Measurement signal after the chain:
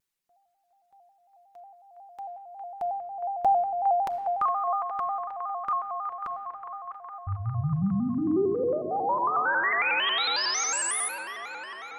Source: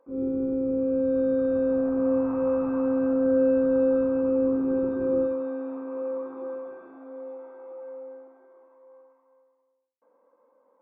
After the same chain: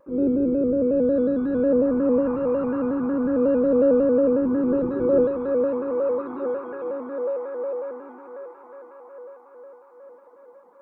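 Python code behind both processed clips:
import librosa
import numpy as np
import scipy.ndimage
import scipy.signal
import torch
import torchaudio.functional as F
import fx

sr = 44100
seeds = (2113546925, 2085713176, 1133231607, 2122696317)

y = fx.dereverb_blind(x, sr, rt60_s=0.87)
y = fx.peak_eq(y, sr, hz=650.0, db=-11.5, octaves=0.25)
y = fx.rider(y, sr, range_db=5, speed_s=2.0)
y = fx.echo_wet_bandpass(y, sr, ms=410, feedback_pct=74, hz=1100.0, wet_db=-5.0)
y = fx.room_shoebox(y, sr, seeds[0], volume_m3=3000.0, walls='mixed', distance_m=0.95)
y = fx.vibrato_shape(y, sr, shape='square', rate_hz=5.5, depth_cents=100.0)
y = y * librosa.db_to_amplitude(5.5)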